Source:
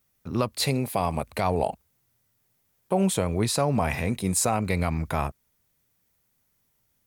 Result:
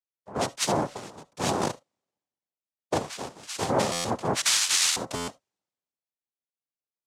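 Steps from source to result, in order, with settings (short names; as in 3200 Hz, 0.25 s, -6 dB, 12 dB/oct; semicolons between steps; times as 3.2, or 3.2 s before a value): 0.93–1.39 compressor 4:1, threshold -31 dBFS, peak gain reduction 9.5 dB; 2.94–3.69 rippled Chebyshev high-pass 510 Hz, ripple 3 dB; 4.41–4.96 inverted band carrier 3400 Hz; noise vocoder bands 2; reverb, pre-delay 40 ms, DRR 19.5 dB; stuck buffer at 3.92/5.15, samples 512, times 10; three-band expander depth 70%; gain -2 dB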